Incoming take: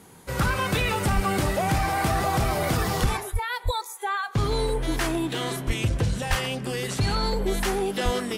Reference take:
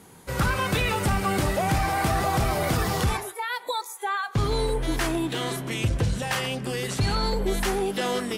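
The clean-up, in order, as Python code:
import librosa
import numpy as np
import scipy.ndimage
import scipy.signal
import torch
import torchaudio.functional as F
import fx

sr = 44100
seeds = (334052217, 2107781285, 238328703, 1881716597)

y = fx.fix_deplosive(x, sr, at_s=(1.15, 3.01, 3.32, 3.64, 5.66, 6.29, 8.04))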